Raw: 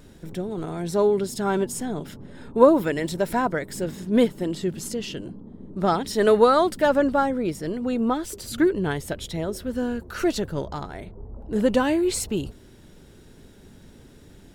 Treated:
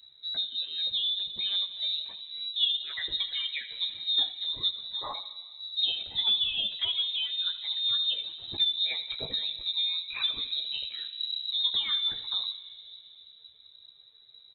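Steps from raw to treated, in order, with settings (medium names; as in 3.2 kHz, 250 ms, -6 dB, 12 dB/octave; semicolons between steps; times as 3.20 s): expander on every frequency bin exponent 1.5; compression 4:1, threshold -34 dBFS, peak gain reduction 19.5 dB; touch-sensitive flanger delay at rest 5.2 ms, full sweep at -30.5 dBFS; early reflections 16 ms -6.5 dB, 79 ms -14.5 dB; plate-style reverb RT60 3.5 s, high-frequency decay 0.4×, DRR 12.5 dB; frequency inversion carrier 3.9 kHz; trim +6 dB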